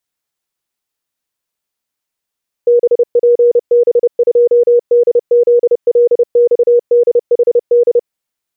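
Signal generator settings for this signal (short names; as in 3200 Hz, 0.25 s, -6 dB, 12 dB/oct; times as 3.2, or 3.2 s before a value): Morse "BPB2DZLXDHD" 30 wpm 479 Hz -5 dBFS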